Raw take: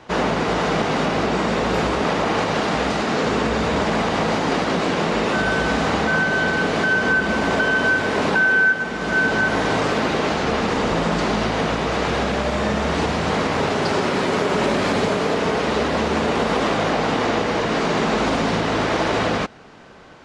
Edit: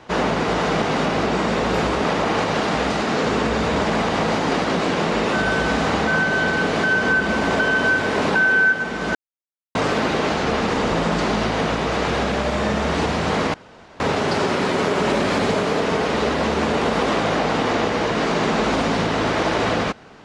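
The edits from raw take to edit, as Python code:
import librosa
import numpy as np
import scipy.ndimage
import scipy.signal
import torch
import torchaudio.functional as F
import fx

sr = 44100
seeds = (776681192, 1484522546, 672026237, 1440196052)

y = fx.edit(x, sr, fx.silence(start_s=9.15, length_s=0.6),
    fx.insert_room_tone(at_s=13.54, length_s=0.46), tone=tone)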